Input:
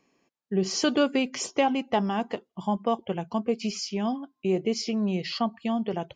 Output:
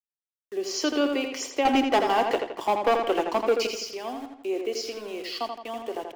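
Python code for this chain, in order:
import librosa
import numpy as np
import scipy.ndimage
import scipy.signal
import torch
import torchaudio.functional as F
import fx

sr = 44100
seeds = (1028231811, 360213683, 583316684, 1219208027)

y = scipy.signal.sosfilt(scipy.signal.cheby1(5, 1.0, 280.0, 'highpass', fs=sr, output='sos'), x)
y = fx.leveller(y, sr, passes=3, at=(1.65, 3.67))
y = np.where(np.abs(y) >= 10.0 ** (-41.5 / 20.0), y, 0.0)
y = fx.echo_filtered(y, sr, ms=83, feedback_pct=48, hz=4900.0, wet_db=-5.5)
y = y * 10.0 ** (-1.5 / 20.0)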